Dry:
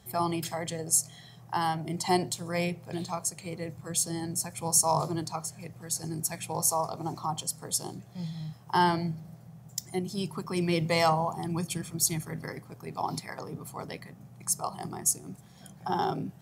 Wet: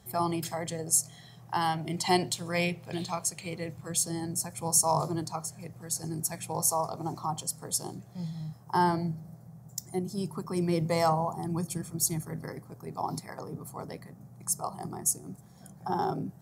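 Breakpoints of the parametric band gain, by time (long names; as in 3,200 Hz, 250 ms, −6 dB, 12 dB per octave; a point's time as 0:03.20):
parametric band 2,900 Hz 1.2 octaves
0:01.17 −3.5 dB
0:01.93 +5.5 dB
0:03.51 +5.5 dB
0:04.27 −5.5 dB
0:08.11 −5.5 dB
0:08.65 −12.5 dB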